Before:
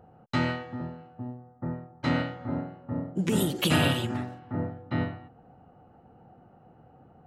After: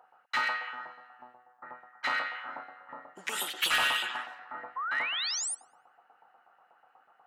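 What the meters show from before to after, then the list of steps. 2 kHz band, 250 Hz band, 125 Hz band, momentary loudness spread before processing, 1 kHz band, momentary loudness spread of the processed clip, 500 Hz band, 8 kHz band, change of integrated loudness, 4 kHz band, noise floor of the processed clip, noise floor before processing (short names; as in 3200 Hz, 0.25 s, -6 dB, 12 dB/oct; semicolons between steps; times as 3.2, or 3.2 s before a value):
+5.0 dB, -26.5 dB, under -30 dB, 16 LU, +1.5 dB, 20 LU, -13.5 dB, +5.0 dB, -1.0 dB, +2.5 dB, -67 dBFS, -57 dBFS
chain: LFO high-pass saw up 8.2 Hz 930–1900 Hz; painted sound rise, 4.76–5.55, 1000–10000 Hz -33 dBFS; delay with a stepping band-pass 0.102 s, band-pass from 3500 Hz, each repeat -0.7 oct, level -7.5 dB; in parallel at -6 dB: wavefolder -23 dBFS; on the sum: gain -4 dB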